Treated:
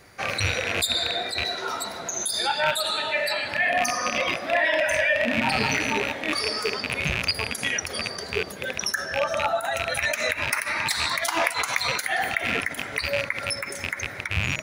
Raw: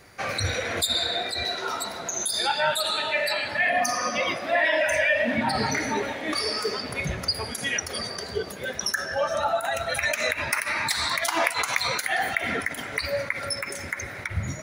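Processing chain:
loose part that buzzes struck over −38 dBFS, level −13 dBFS

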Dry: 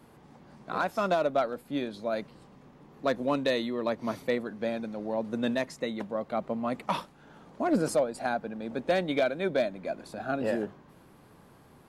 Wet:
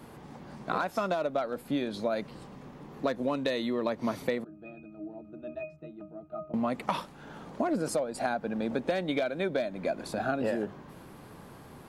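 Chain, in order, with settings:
0:04.44–0:06.54: resonances in every octave D#, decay 0.25 s
downward compressor 10 to 1, threshold −33 dBFS, peak gain reduction 12.5 dB
level +7 dB

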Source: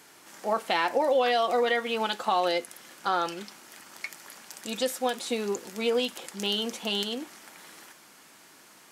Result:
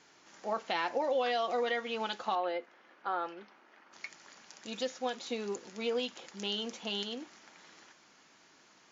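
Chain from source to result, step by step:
0:02.35–0:03.93: band-pass filter 290–2,000 Hz
level −7 dB
WMA 64 kbit/s 16,000 Hz

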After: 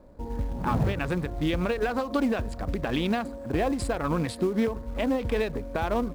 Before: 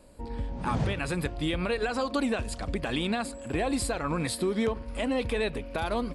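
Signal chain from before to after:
adaptive Wiener filter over 15 samples
low-pass filter 4,000 Hz 6 dB per octave
in parallel at −6 dB: floating-point word with a short mantissa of 2 bits
on the sum: every ending faded ahead of time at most 120 dB per second

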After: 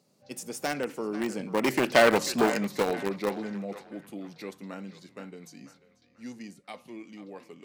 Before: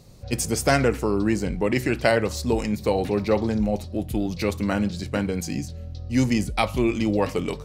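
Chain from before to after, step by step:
source passing by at 0:02.15, 17 m/s, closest 5.8 metres
high-pass filter 180 Hz 24 dB per octave
in parallel at −8.5 dB: bit reduction 4 bits
on the sum: feedback echo with a band-pass in the loop 490 ms, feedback 41%, band-pass 1,500 Hz, level −12 dB
saturating transformer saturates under 2,000 Hz
level +2 dB

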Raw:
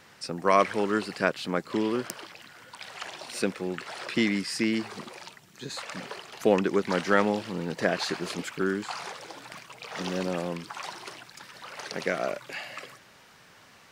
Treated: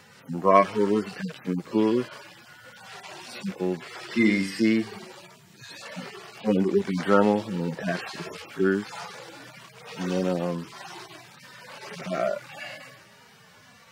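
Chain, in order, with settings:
harmonic-percussive split with one part muted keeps harmonic
0:04.16–0:04.60: flutter between parallel walls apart 7.1 metres, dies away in 0.4 s
level +5.5 dB

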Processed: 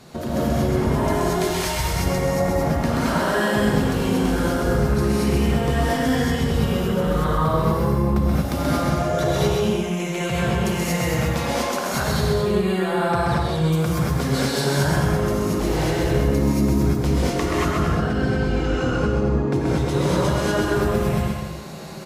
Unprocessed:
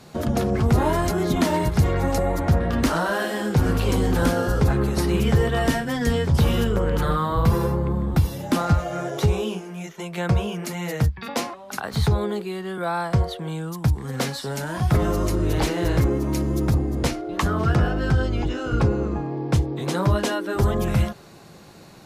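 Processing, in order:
0:01.30–0:01.85: guitar amp tone stack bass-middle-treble 10-0-10
downward compressor, threshold −27 dBFS, peak gain reduction 13.5 dB
bouncing-ball delay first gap 130 ms, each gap 0.7×, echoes 5
reverb whose tail is shaped and stops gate 260 ms rising, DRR −7 dB

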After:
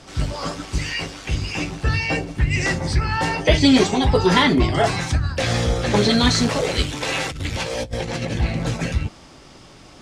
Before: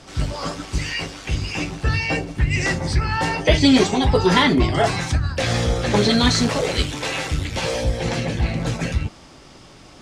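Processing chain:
0:07.01–0:08.38: compressor whose output falls as the input rises −25 dBFS, ratio −0.5

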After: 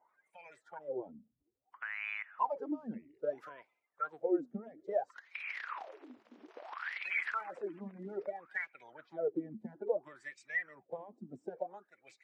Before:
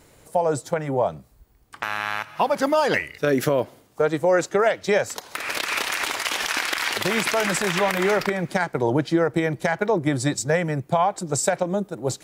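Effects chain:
spectral magnitudes quantised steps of 30 dB
LFO wah 0.6 Hz 220–2,400 Hz, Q 14
level −2 dB

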